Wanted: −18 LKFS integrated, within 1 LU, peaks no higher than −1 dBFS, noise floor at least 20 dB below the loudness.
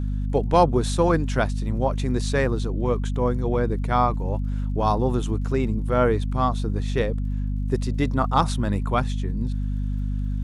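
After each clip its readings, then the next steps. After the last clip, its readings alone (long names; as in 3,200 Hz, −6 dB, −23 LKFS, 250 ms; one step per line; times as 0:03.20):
crackle rate 50 per second; mains hum 50 Hz; hum harmonics up to 250 Hz; level of the hum −23 dBFS; integrated loudness −24.0 LKFS; sample peak −4.5 dBFS; target loudness −18.0 LKFS
→ click removal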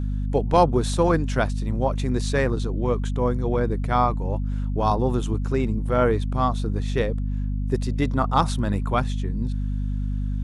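crackle rate 0.096 per second; mains hum 50 Hz; hum harmonics up to 250 Hz; level of the hum −23 dBFS
→ hum removal 50 Hz, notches 5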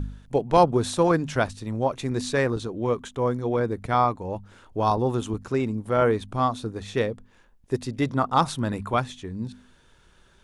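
mains hum none found; integrated loudness −25.5 LKFS; sample peak −5.5 dBFS; target loudness −18.0 LKFS
→ level +7.5 dB
brickwall limiter −1 dBFS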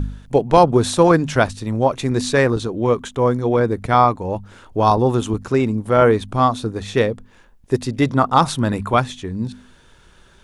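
integrated loudness −18.0 LKFS; sample peak −1.0 dBFS; background noise floor −50 dBFS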